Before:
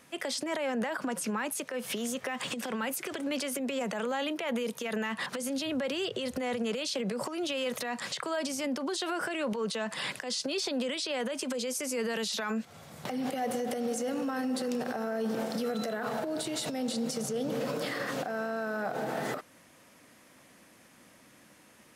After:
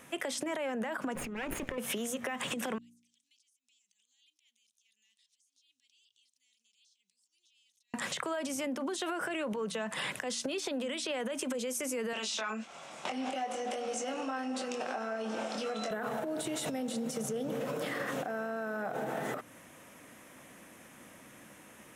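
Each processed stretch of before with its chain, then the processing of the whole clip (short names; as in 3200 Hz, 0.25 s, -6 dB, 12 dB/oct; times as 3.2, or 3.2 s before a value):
1.15–1.78 minimum comb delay 0.43 ms + LPF 2700 Hz 6 dB/oct + negative-ratio compressor -40 dBFS
2.78–7.94 inverse Chebyshev high-pass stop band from 1500 Hz, stop band 60 dB + compressor 4:1, threshold -54 dBFS + tape spacing loss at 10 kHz 27 dB
12.13–15.91 speaker cabinet 400–8000 Hz, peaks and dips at 460 Hz -7 dB, 1800 Hz -5 dB, 2600 Hz +4 dB, 5000 Hz +4 dB + doubler 23 ms -5 dB
whole clip: bell 4600 Hz -10 dB 0.46 oct; de-hum 59.16 Hz, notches 5; compressor, threshold -37 dBFS; gain +4.5 dB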